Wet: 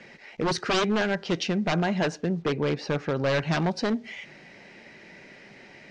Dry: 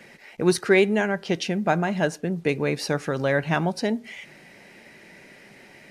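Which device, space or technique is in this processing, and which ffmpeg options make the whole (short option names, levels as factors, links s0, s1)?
synthesiser wavefolder: -filter_complex "[0:a]asettb=1/sr,asplit=3[s0][s1][s2];[s0]atrim=end=2.424[s3];[s1]atrim=start=2.42:end=3.26,asetpts=PTS-STARTPTS,afade=t=in:d=0.004:c=qsin,afade=t=out:st=0.836:d=0.004:c=qsin,aemphasis=mode=reproduction:type=75kf[s4];[s2]atrim=start=3.256[s5];[s3][s4]acrossfade=d=0.004:c1=hsin:c2=qsin[s6];[s6][s5]acrossfade=d=0.004:c1=qsin:c2=hsin,aeval=exprs='0.119*(abs(mod(val(0)/0.119+3,4)-2)-1)':c=same,lowpass=f=6300:w=0.5412,lowpass=f=6300:w=1.3066"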